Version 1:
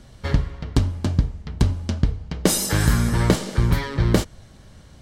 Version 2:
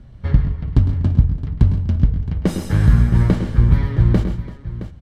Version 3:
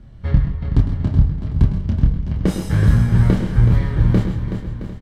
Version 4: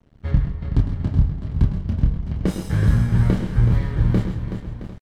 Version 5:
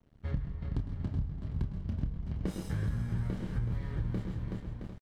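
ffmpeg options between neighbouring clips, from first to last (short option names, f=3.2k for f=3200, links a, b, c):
-filter_complex "[0:a]bass=f=250:g=11,treble=f=4k:g=-14,asplit=2[a][b];[b]aecho=0:1:106|127|139|165|337|668:0.266|0.251|0.141|0.119|0.119|0.2[c];[a][c]amix=inputs=2:normalize=0,volume=-5dB"
-filter_complex "[0:a]asplit=2[a][b];[b]adelay=27,volume=-4dB[c];[a][c]amix=inputs=2:normalize=0,aecho=1:1:375|750|1125|1500:0.355|0.135|0.0512|0.0195,volume=-1.5dB"
-af "aeval=exprs='sgn(val(0))*max(abs(val(0))-0.01,0)':c=same,volume=-3dB"
-af "acompressor=threshold=-21dB:ratio=4,volume=-9dB"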